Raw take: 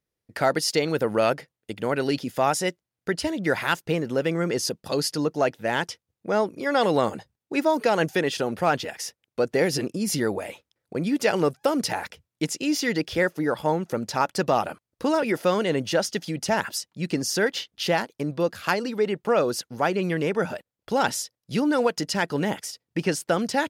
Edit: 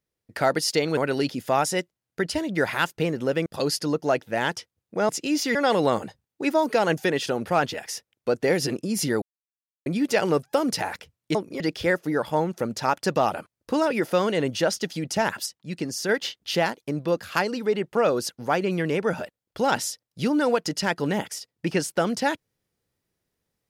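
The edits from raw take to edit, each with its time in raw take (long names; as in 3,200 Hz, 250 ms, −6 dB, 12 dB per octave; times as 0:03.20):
0:00.97–0:01.86: remove
0:04.35–0:04.78: remove
0:06.41–0:06.66: swap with 0:12.46–0:12.92
0:10.33–0:10.97: silence
0:16.78–0:17.41: clip gain −4 dB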